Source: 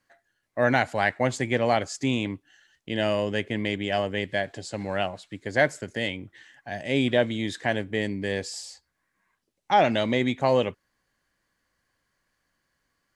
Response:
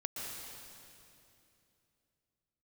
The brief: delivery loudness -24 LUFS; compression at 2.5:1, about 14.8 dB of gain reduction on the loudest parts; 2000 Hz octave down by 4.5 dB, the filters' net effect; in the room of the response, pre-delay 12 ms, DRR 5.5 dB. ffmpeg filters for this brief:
-filter_complex "[0:a]equalizer=f=2k:t=o:g=-5.5,acompressor=threshold=-40dB:ratio=2.5,asplit=2[a][b];[1:a]atrim=start_sample=2205,adelay=12[c];[b][c]afir=irnorm=-1:irlink=0,volume=-7dB[d];[a][d]amix=inputs=2:normalize=0,volume=15dB"

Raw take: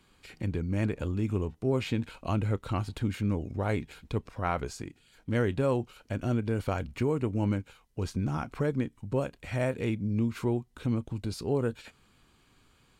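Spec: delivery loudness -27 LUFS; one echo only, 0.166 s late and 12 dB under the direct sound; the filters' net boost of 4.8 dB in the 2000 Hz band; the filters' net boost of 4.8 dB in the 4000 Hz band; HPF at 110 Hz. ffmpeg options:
-af "highpass=110,equalizer=f=2k:t=o:g=5,equalizer=f=4k:t=o:g=4.5,aecho=1:1:166:0.251,volume=4.5dB"

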